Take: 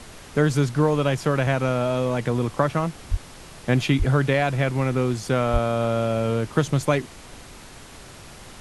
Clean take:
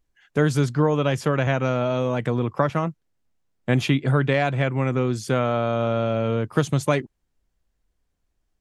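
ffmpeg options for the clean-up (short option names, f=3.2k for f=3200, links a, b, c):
-filter_complex "[0:a]asplit=3[a][b][c];[a]afade=t=out:st=3.1:d=0.02[d];[b]highpass=f=140:w=0.5412,highpass=f=140:w=1.3066,afade=t=in:st=3.1:d=0.02,afade=t=out:st=3.22:d=0.02[e];[c]afade=t=in:st=3.22:d=0.02[f];[d][e][f]amix=inputs=3:normalize=0,asplit=3[g][h][i];[g]afade=t=out:st=3.98:d=0.02[j];[h]highpass=f=140:w=0.5412,highpass=f=140:w=1.3066,afade=t=in:st=3.98:d=0.02,afade=t=out:st=4.1:d=0.02[k];[i]afade=t=in:st=4.1:d=0.02[l];[j][k][l]amix=inputs=3:normalize=0,asplit=3[m][n][o];[m]afade=t=out:st=5.52:d=0.02[p];[n]highpass=f=140:w=0.5412,highpass=f=140:w=1.3066,afade=t=in:st=5.52:d=0.02,afade=t=out:st=5.64:d=0.02[q];[o]afade=t=in:st=5.64:d=0.02[r];[p][q][r]amix=inputs=3:normalize=0,afftdn=nr=29:nf=-43"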